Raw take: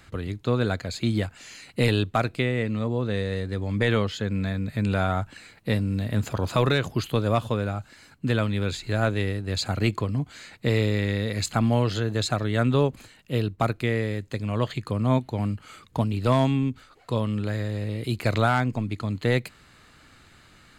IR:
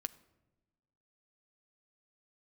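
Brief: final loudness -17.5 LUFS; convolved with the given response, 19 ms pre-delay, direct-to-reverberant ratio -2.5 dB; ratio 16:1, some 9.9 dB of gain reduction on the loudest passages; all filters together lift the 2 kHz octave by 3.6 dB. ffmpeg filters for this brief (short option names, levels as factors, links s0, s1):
-filter_complex "[0:a]equalizer=f=2000:t=o:g=4.5,acompressor=threshold=0.0501:ratio=16,asplit=2[s0][s1];[1:a]atrim=start_sample=2205,adelay=19[s2];[s1][s2]afir=irnorm=-1:irlink=0,volume=1.68[s3];[s0][s3]amix=inputs=2:normalize=0,volume=3.16"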